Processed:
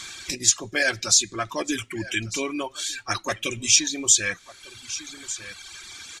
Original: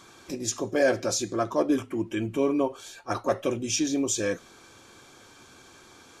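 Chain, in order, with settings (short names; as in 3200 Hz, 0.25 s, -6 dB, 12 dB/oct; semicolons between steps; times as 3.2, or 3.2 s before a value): graphic EQ 125/250/500/1000/2000/4000/8000 Hz -6/-8/-10/-4/+10/+9/+11 dB; on a send: echo 1.199 s -19 dB; on the sum: reverb removal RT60 1.4 s; low shelf 390 Hz +6.5 dB; in parallel at +2.5 dB: compressor, threshold -35 dBFS, peak gain reduction 21 dB; on the sum: gain -1 dB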